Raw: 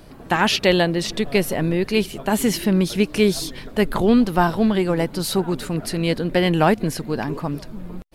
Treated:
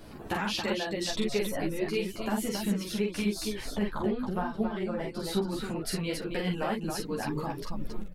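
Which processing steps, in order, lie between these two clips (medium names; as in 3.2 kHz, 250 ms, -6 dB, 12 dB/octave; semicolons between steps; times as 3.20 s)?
reverb removal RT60 0.98 s; 3.69–5.70 s: treble shelf 3.9 kHz -12 dB; compression, threshold -27 dBFS, peak gain reduction 15 dB; loudspeakers at several distances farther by 15 m -3 dB, 94 m -5 dB; three-phase chorus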